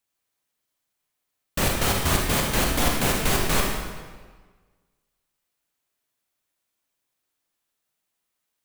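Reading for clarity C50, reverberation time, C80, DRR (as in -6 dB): 1.5 dB, 1.5 s, 3.5 dB, -0.5 dB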